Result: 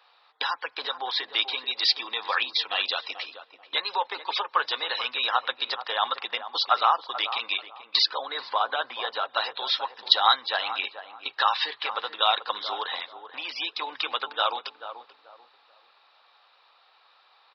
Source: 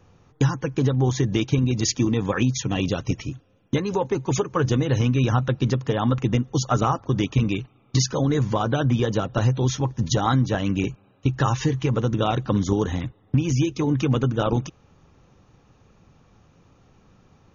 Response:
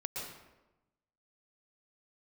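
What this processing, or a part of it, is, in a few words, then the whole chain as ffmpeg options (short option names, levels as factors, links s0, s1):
musical greeting card: -filter_complex "[0:a]asettb=1/sr,asplit=3[s0][s1][s2];[s0]atrim=end=8.054[s3];[s1]atrim=start=8.05:end=9.29,asetpts=PTS-STARTPTS,afade=t=in:d=0.004:c=qsin,afade=t=out:st=1.236:d=0.004:c=qsin,aemphasis=mode=reproduction:type=75kf[s4];[s2]atrim=start=9.286[s5];[s3][s4]acrossfade=d=0.004:c1=hsin:c2=qsin[s6];[s6][s5]acrossfade=d=0.004:c1=qsin:c2=hsin,asplit=2[s7][s8];[s8]adelay=436,lowpass=f=940:p=1,volume=0.355,asplit=2[s9][s10];[s10]adelay=436,lowpass=f=940:p=1,volume=0.32,asplit=2[s11][s12];[s12]adelay=436,lowpass=f=940:p=1,volume=0.32,asplit=2[s13][s14];[s14]adelay=436,lowpass=f=940:p=1,volume=0.32[s15];[s7][s9][s11][s13][s15]amix=inputs=5:normalize=0,aresample=11025,aresample=44100,highpass=f=780:w=0.5412,highpass=f=780:w=1.3066,equalizer=f=3900:t=o:w=0.35:g=11,volume=1.58"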